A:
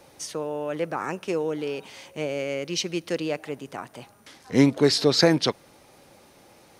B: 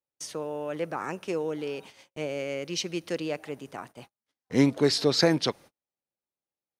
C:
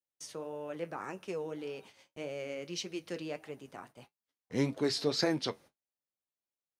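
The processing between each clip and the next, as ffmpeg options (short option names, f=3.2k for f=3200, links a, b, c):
-af "agate=range=-42dB:threshold=-42dB:ratio=16:detection=peak,volume=-3.5dB"
-af "flanger=delay=8.7:depth=2.9:regen=-58:speed=1.7:shape=sinusoidal,volume=-3.5dB"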